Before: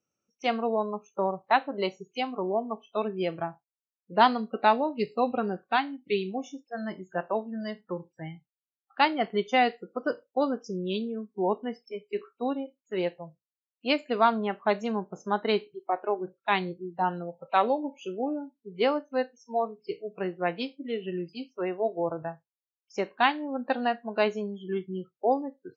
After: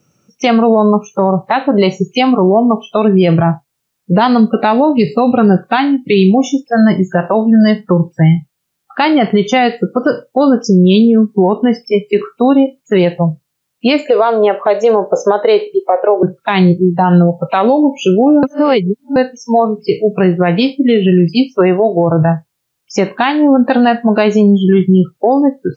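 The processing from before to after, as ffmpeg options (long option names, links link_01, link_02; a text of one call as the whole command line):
ffmpeg -i in.wav -filter_complex "[0:a]asettb=1/sr,asplit=3[link_01][link_02][link_03];[link_01]atrim=end=14.074[link_04];[link_02]atrim=start=14.07:end=16.23,asetpts=PTS-STARTPTS,afade=type=in:duration=0.004:curve=qsin,afade=type=out:start_time=2.156:duration=0.004:curve=qsin,highpass=frequency=510:width_type=q:width=6[link_05];[link_03]atrim=start=16.226[link_06];[link_04][link_05]acrossfade=duration=0.004:curve1=hsin:curve2=qsin[link_07];[link_07][link_06]acrossfade=duration=0.004:curve1=qsin:curve2=hsin,asplit=3[link_08][link_09][link_10];[link_08]atrim=end=18.432[link_11];[link_09]atrim=start=18.428:end=19.162,asetpts=PTS-STARTPTS,areverse[link_12];[link_10]atrim=start=19.158[link_13];[link_11][link_12]acrossfade=duration=0.004:curve1=hsin:curve2=hsin[link_14];[link_14][link_13]acrossfade=duration=0.004:curve1=hsin:curve2=hsin,acompressor=threshold=-25dB:ratio=6,equalizer=frequency=140:width=1.3:gain=12.5,alimiter=level_in=25dB:limit=-1dB:release=50:level=0:latency=1,volume=-1dB" out.wav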